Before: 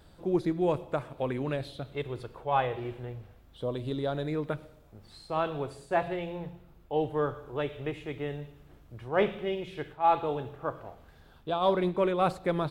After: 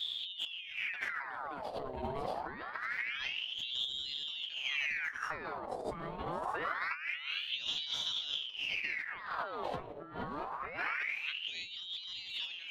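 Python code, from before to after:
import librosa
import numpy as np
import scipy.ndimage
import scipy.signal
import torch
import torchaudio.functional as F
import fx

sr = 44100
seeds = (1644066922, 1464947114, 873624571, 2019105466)

p1 = fx.dmg_wind(x, sr, seeds[0], corner_hz=220.0, level_db=-40.0)
p2 = fx.low_shelf(p1, sr, hz=110.0, db=10.5)
p3 = p2 + fx.echo_single(p2, sr, ms=630, db=-6.0, dry=0)
p4 = fx.hpss(p3, sr, part='harmonic', gain_db=6)
p5 = fx.over_compress(p4, sr, threshold_db=-31.0, ratio=-1.0)
p6 = scipy.signal.sosfilt(scipy.signal.butter(2, 49.0, 'highpass', fs=sr, output='sos'), p5)
p7 = fx.ring_lfo(p6, sr, carrier_hz=2000.0, swing_pct=75, hz=0.25)
y = F.gain(torch.from_numpy(p7), -5.5).numpy()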